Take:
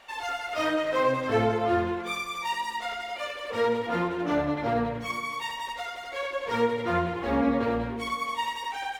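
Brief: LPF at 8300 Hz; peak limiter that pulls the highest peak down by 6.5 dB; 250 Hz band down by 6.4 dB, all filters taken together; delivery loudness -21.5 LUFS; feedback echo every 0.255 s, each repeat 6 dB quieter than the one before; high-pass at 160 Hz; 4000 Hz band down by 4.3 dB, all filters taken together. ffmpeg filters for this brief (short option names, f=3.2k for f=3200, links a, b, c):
-af "highpass=160,lowpass=8.3k,equalizer=f=250:t=o:g=-7.5,equalizer=f=4k:t=o:g=-6,alimiter=limit=-21dB:level=0:latency=1,aecho=1:1:255|510|765|1020|1275|1530:0.501|0.251|0.125|0.0626|0.0313|0.0157,volume=9dB"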